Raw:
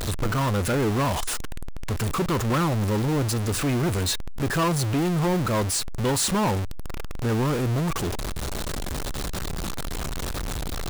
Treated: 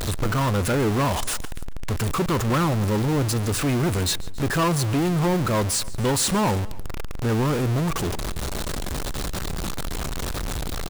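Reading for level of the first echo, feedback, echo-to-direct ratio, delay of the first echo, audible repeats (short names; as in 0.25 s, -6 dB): -21.0 dB, no steady repeat, -19.0 dB, 0.142 s, 2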